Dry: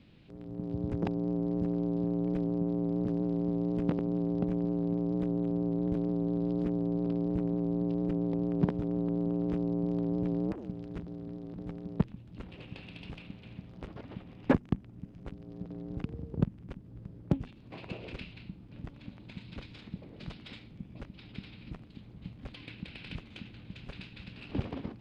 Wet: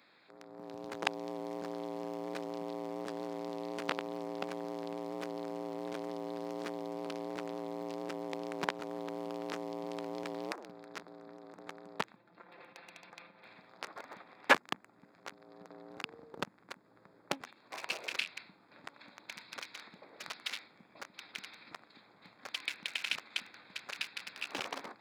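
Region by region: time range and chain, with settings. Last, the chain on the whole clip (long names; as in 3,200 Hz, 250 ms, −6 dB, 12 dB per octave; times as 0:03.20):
0:12.16–0:13.45: low-pass filter 1,800 Hz 6 dB per octave + downward compressor 2.5 to 1, threshold −46 dBFS + comb filter 5.8 ms, depth 55%
whole clip: adaptive Wiener filter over 15 samples; high-pass filter 1,100 Hz 12 dB per octave; high-shelf EQ 3,200 Hz +10.5 dB; level +11.5 dB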